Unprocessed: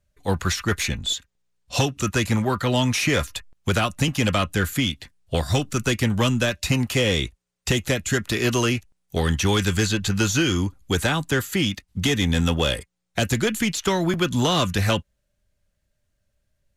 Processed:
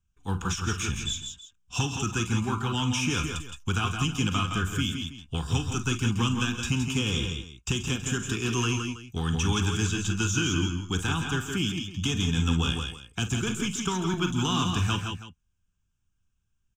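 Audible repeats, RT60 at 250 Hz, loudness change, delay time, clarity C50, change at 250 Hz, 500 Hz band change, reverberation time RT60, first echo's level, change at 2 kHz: 4, no reverb, -5.0 dB, 43 ms, no reverb, -5.0 dB, -11.5 dB, no reverb, -12.5 dB, -6.5 dB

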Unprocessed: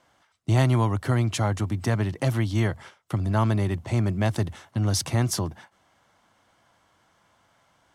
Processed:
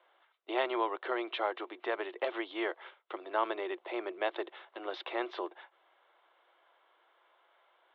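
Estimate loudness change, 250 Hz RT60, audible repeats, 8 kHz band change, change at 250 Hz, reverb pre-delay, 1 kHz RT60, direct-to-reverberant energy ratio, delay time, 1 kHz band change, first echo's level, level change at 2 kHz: -11.0 dB, no reverb, no echo, under -40 dB, -13.5 dB, no reverb, no reverb, no reverb, no echo, -3.5 dB, no echo, -3.5 dB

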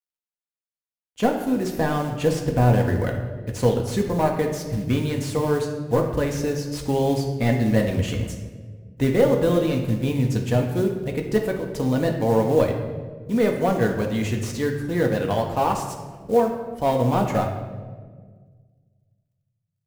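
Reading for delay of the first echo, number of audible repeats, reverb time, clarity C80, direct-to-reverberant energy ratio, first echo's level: no echo, no echo, 1.6 s, 8.0 dB, 1.5 dB, no echo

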